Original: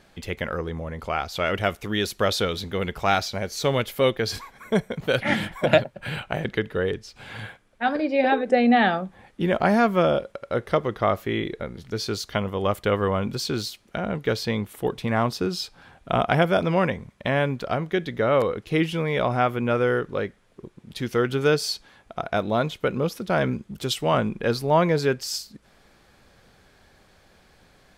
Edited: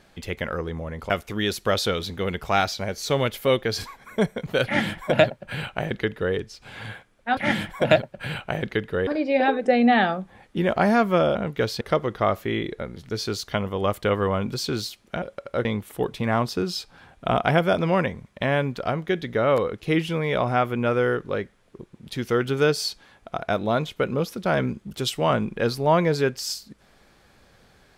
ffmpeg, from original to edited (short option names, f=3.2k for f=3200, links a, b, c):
-filter_complex "[0:a]asplit=8[a][b][c][d][e][f][g][h];[a]atrim=end=1.102[i];[b]atrim=start=1.638:end=7.912[j];[c]atrim=start=5.188:end=6.892[k];[d]atrim=start=7.908:end=10.192[l];[e]atrim=start=14.028:end=14.492[m];[f]atrim=start=10.618:end=14.032[n];[g]atrim=start=10.188:end=10.622[o];[h]atrim=start=14.488[p];[i][j]acrossfade=d=0.004:c1=hsin:c2=hsin[q];[q][k]acrossfade=d=0.004:c1=hsin:c2=hsin[r];[r][l]acrossfade=d=0.004:c1=hsin:c2=hsin[s];[s][m]acrossfade=d=0.004:c1=hsin:c2=hsin[t];[t][n]acrossfade=d=0.004:c1=hsin:c2=hsin[u];[u][o]acrossfade=d=0.004:c1=hsin:c2=hsin[v];[v][p]acrossfade=d=0.004:c1=hsin:c2=hsin"